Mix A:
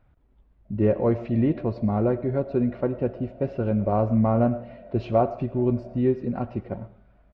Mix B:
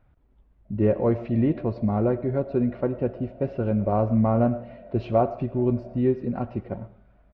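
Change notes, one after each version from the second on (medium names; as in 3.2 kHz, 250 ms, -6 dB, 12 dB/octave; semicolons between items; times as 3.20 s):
speech: add distance through air 59 m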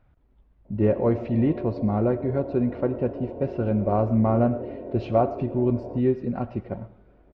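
speech: remove distance through air 59 m; background: remove two resonant band-passes 350 Hz, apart 1.7 oct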